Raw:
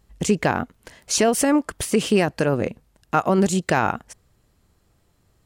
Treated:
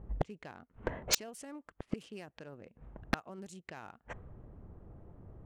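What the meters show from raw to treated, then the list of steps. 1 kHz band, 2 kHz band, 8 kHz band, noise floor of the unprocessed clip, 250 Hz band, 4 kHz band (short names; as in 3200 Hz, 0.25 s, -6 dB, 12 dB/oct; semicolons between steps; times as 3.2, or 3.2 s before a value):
-21.5 dB, -16.5 dB, -14.0 dB, -64 dBFS, -22.5 dB, -10.0 dB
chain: Wiener smoothing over 9 samples; low-pass opened by the level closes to 710 Hz, open at -14.5 dBFS; high shelf 2800 Hz +7.5 dB; flipped gate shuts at -19 dBFS, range -40 dB; wavefolder -28.5 dBFS; gain +11 dB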